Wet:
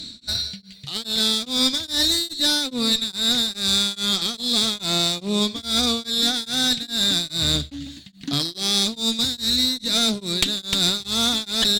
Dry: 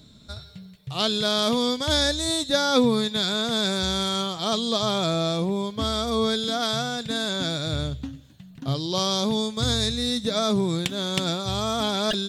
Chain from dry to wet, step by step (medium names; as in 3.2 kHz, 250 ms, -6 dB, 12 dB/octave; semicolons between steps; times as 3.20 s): graphic EQ 125/250/500/1000/2000/4000/8000 Hz -8/+6/-5/-4/+6/+12/+7 dB; reverse; compression 6:1, threshold -23 dBFS, peak gain reduction 14.5 dB; reverse; one-sided clip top -28 dBFS; on a send: delay 156 ms -18 dB; on the sum: speed mistake 24 fps film run at 25 fps; tremolo of two beating tones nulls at 2.4 Hz; trim +8.5 dB